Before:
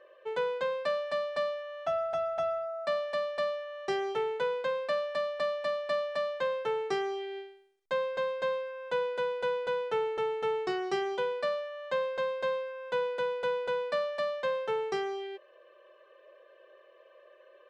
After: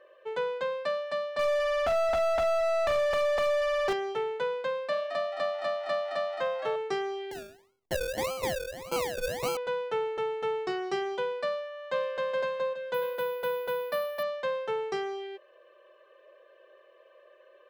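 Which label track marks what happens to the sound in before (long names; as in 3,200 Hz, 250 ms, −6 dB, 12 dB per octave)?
1.390000	3.930000	mid-hump overdrive drive 38 dB, tone 1,300 Hz, clips at −19.5 dBFS
4.700000	6.760000	echo with shifted repeats 217 ms, feedback 34%, per repeat +94 Hz, level −8 dB
7.310000	9.570000	sample-and-hold swept by an LFO 34×, swing 60% 1.7 Hz
11.510000	12.310000	delay throw 420 ms, feedback 30%, level −3 dB
12.940000	14.230000	bad sample-rate conversion rate divided by 3×, down filtered, up hold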